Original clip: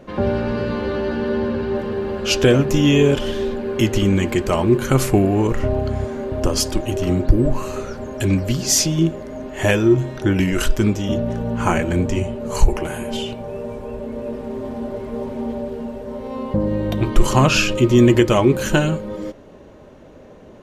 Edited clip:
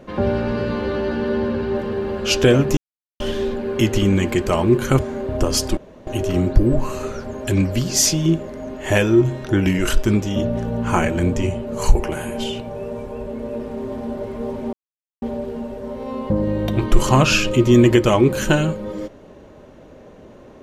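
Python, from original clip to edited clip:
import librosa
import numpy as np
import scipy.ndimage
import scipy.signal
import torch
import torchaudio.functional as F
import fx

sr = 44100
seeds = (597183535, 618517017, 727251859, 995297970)

y = fx.edit(x, sr, fx.silence(start_s=2.77, length_s=0.43),
    fx.cut(start_s=4.99, length_s=1.03),
    fx.insert_room_tone(at_s=6.8, length_s=0.3),
    fx.insert_silence(at_s=15.46, length_s=0.49), tone=tone)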